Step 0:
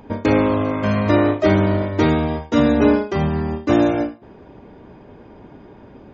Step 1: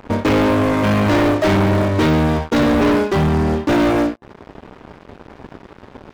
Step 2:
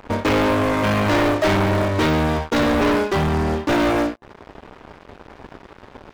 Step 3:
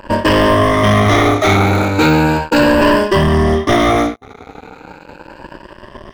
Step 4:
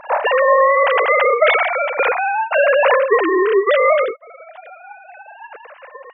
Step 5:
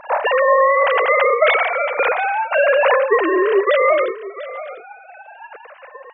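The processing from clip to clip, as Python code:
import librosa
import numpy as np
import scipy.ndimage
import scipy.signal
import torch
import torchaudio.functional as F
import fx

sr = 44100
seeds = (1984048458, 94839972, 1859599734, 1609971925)

y1 = fx.leveller(x, sr, passes=5)
y1 = F.gain(torch.from_numpy(y1), -9.0).numpy()
y2 = fx.peak_eq(y1, sr, hz=180.0, db=-5.5, octaves=2.6)
y3 = fx.spec_ripple(y2, sr, per_octave=1.3, drift_hz=0.36, depth_db=14)
y3 = F.gain(torch.from_numpy(y3), 5.0).numpy()
y4 = fx.sine_speech(y3, sr)
y4 = F.gain(torch.from_numpy(y4), -3.0).numpy()
y5 = y4 + 10.0 ** (-15.5 / 20.0) * np.pad(y4, (int(694 * sr / 1000.0), 0))[:len(y4)]
y5 = F.gain(torch.from_numpy(y5), -1.0).numpy()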